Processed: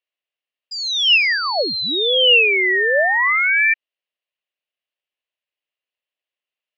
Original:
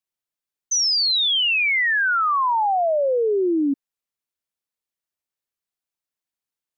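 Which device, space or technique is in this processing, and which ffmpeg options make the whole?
voice changer toy: -af "aeval=exprs='val(0)*sin(2*PI*1600*n/s+1600*0.3/0.53*sin(2*PI*0.53*n/s))':channel_layout=same,highpass=430,equalizer=frequency=590:width_type=q:width=4:gain=6,equalizer=frequency=870:width_type=q:width=4:gain=-5,equalizer=frequency=1400:width_type=q:width=4:gain=-5,equalizer=frequency=1900:width_type=q:width=4:gain=3,equalizer=frequency=2800:width_type=q:width=4:gain=10,lowpass=frequency=4000:width=0.5412,lowpass=frequency=4000:width=1.3066,volume=5dB"

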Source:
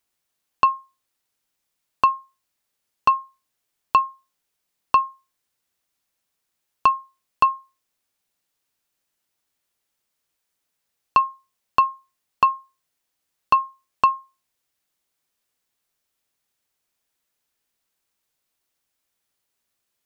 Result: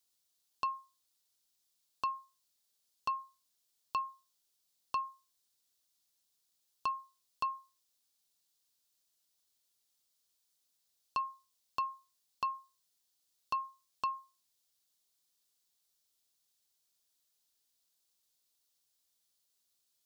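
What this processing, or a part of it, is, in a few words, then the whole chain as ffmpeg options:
over-bright horn tweeter: -af "highshelf=frequency=3000:width_type=q:width=1.5:gain=8.5,alimiter=limit=-14dB:level=0:latency=1:release=134,volume=-9dB"

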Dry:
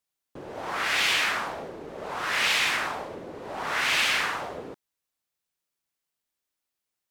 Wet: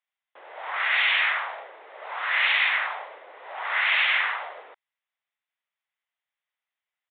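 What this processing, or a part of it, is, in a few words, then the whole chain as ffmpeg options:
musical greeting card: -af "aresample=8000,aresample=44100,highpass=frequency=640:width=0.5412,highpass=frequency=640:width=1.3066,equalizer=frequency=2000:width_type=o:width=0.33:gain=7"

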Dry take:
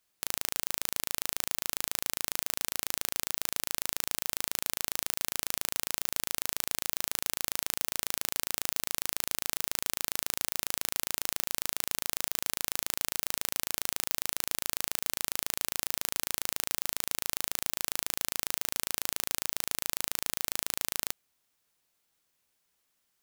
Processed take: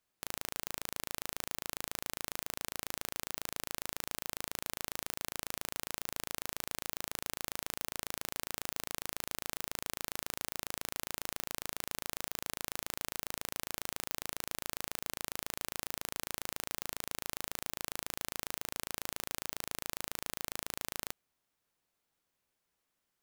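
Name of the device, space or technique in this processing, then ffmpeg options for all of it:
behind a face mask: -af "highshelf=frequency=2200:gain=-7.5,volume=-1.5dB"

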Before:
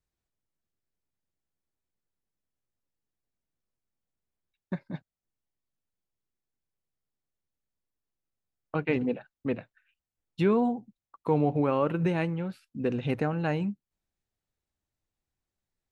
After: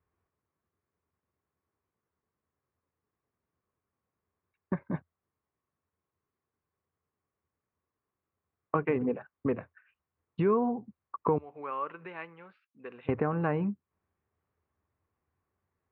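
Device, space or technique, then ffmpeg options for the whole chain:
bass amplifier: -filter_complex "[0:a]asettb=1/sr,asplit=3[link_01][link_02][link_03];[link_01]atrim=end=11.384[link_04];[link_02]atrim=start=11.38:end=13.09,asetpts=PTS-STARTPTS,afade=type=in:duration=0.004:curve=qsin,afade=type=out:start_time=1.706:duration=0.004:curve=qsin,aderivative[link_05];[link_03]atrim=start=13.086[link_06];[link_04][link_05]acrossfade=duration=0.004:curve1=hsin:curve2=qsin[link_07];[link_07][link_06]acrossfade=duration=0.004:curve1=qsin:curve2=hsin,acompressor=threshold=-36dB:ratio=3,highpass=82,equalizer=frequency=84:width_type=q:width=4:gain=10,equalizer=frequency=420:width_type=q:width=4:gain=6,equalizer=frequency=1100:width_type=q:width=4:gain=10,lowpass=frequency=2200:width=0.5412,lowpass=frequency=2200:width=1.3066,volume=6dB"

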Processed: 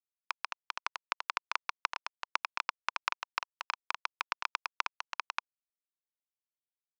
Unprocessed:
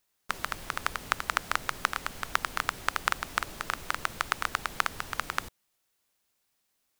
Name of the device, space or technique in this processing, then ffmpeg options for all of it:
hand-held game console: -filter_complex "[0:a]asettb=1/sr,asplit=3[link_01][link_02][link_03];[link_01]atrim=end=0.834[link_04];[link_02]atrim=start=0.83:end=2.93,asetpts=PTS-STARTPTS,afade=type=in:duration=0.004:curve=qsin,afade=type=out:start_time=2.096:duration=0.004:curve=qsin,highpass=frequency=150:width=0.5412,highpass=frequency=150:width=1.3066[link_05];[link_03]atrim=start=2.926[link_06];[link_04][link_05]acrossfade=duration=0.004:curve1=hsin:curve2=qsin[link_07];[link_07][link_06]acrossfade=duration=0.004:curve1=qsin:curve2=hsin,acrusher=bits=3:mix=0:aa=0.000001,highpass=470,equalizer=frequency=990:width_type=q:width=4:gain=7,equalizer=frequency=1700:width_type=q:width=4:gain=-4,equalizer=frequency=2500:width_type=q:width=4:gain=9,equalizer=frequency=5200:width_type=q:width=4:gain=7,lowpass=frequency=5600:width=0.5412,lowpass=frequency=5600:width=1.3066,volume=-7.5dB"

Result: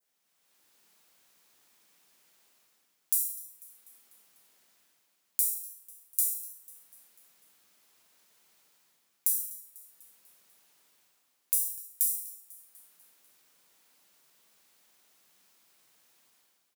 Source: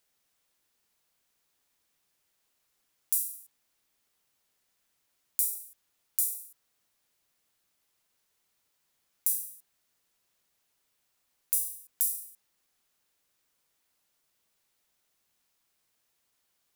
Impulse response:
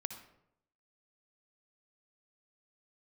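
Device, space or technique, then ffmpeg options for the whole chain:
far laptop microphone: -filter_complex "[1:a]atrim=start_sample=2205[link_01];[0:a][link_01]afir=irnorm=-1:irlink=0,highpass=160,dynaudnorm=framelen=200:gausssize=5:maxgain=12.5dB,adynamicequalizer=threshold=0.00282:dfrequency=3100:dqfactor=0.82:tfrequency=3100:tqfactor=0.82:attack=5:release=100:ratio=0.375:range=2.5:mode=cutabove:tftype=bell,aecho=1:1:247|494|741|988|1235:0.106|0.0593|0.0332|0.0186|0.0104,volume=-1dB"

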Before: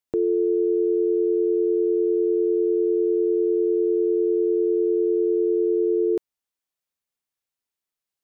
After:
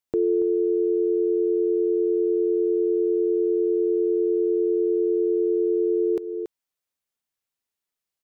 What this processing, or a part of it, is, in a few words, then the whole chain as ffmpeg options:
ducked delay: -filter_complex "[0:a]asplit=3[link_01][link_02][link_03];[link_02]adelay=281,volume=-8dB[link_04];[link_03]apad=whole_len=375706[link_05];[link_04][link_05]sidechaincompress=threshold=-25dB:ratio=8:attack=40:release=350[link_06];[link_01][link_06]amix=inputs=2:normalize=0"

